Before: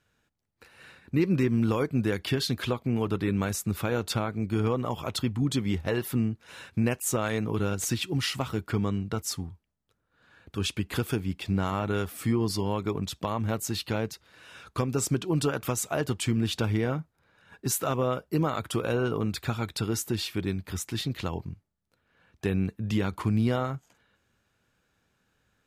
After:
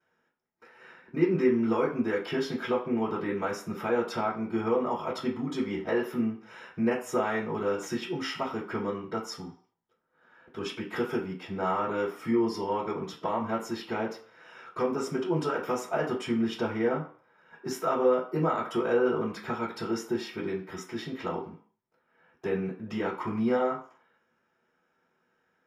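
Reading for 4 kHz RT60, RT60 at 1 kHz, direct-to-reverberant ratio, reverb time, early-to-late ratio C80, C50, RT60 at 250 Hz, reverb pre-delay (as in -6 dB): 0.45 s, 0.50 s, -12.0 dB, 0.45 s, 12.5 dB, 8.5 dB, 0.40 s, 3 ms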